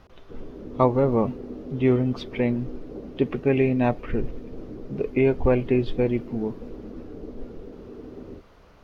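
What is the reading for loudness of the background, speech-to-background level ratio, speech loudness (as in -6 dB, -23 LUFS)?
-40.0 LUFS, 16.0 dB, -24.0 LUFS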